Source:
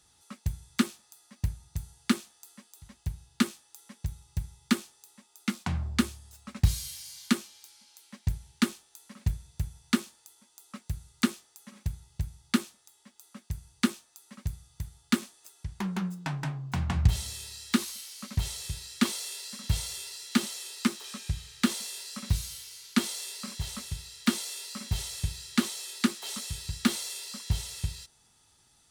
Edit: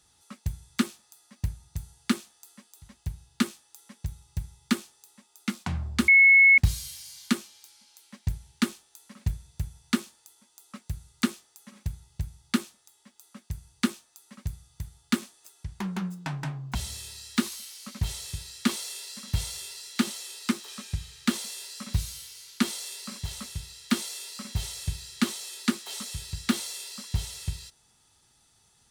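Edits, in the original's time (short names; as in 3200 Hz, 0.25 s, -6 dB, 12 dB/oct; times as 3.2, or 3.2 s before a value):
6.08–6.58 bleep 2190 Hz -12.5 dBFS
16.75–17.11 cut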